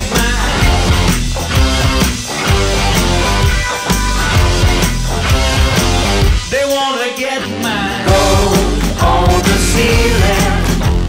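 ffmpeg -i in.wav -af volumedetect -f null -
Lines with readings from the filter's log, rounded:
mean_volume: -12.0 dB
max_volume: -1.4 dB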